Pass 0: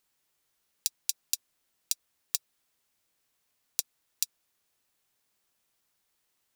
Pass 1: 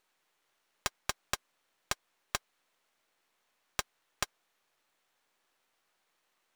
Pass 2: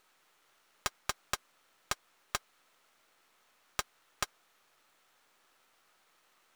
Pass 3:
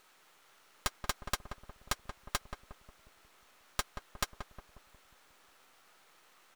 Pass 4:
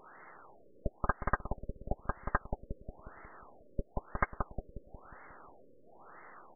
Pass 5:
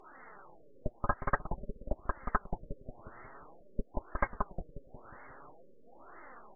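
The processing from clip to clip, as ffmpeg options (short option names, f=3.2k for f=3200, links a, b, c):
-filter_complex "[0:a]bandreject=f=4.9k:w=20,aeval=exprs='max(val(0),0)':c=same,asplit=2[a][b];[b]highpass=f=720:p=1,volume=20dB,asoftclip=type=tanh:threshold=-2.5dB[c];[a][c]amix=inputs=2:normalize=0,lowpass=f=1.5k:p=1,volume=-6dB"
-af "equalizer=f=1.3k:w=6.5:g=5,alimiter=limit=-23dB:level=0:latency=1:release=51,volume=7.5dB"
-filter_complex "[0:a]aeval=exprs='(tanh(44.7*val(0)+0.65)-tanh(0.65))/44.7':c=same,asplit=2[a][b];[b]adelay=180,lowpass=f=940:p=1,volume=-6dB,asplit=2[c][d];[d]adelay=180,lowpass=f=940:p=1,volume=0.54,asplit=2[e][f];[f]adelay=180,lowpass=f=940:p=1,volume=0.54,asplit=2[g][h];[h]adelay=180,lowpass=f=940:p=1,volume=0.54,asplit=2[i][j];[j]adelay=180,lowpass=f=940:p=1,volume=0.54,asplit=2[k][l];[l]adelay=180,lowpass=f=940:p=1,volume=0.54,asplit=2[m][n];[n]adelay=180,lowpass=f=940:p=1,volume=0.54[o];[a][c][e][g][i][k][m][o]amix=inputs=8:normalize=0,volume=8.5dB"
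-af "alimiter=level_in=4dB:limit=-24dB:level=0:latency=1:release=399,volume=-4dB,afftfilt=real='re*lt(b*sr/1024,560*pow(2200/560,0.5+0.5*sin(2*PI*1*pts/sr)))':imag='im*lt(b*sr/1024,560*pow(2200/560,0.5+0.5*sin(2*PI*1*pts/sr)))':win_size=1024:overlap=0.75,volume=13.5dB"
-af "flanger=delay=2.6:depth=6.5:regen=23:speed=0.49:shape=triangular,volume=3.5dB" -ar 32000 -c:a aac -b:a 24k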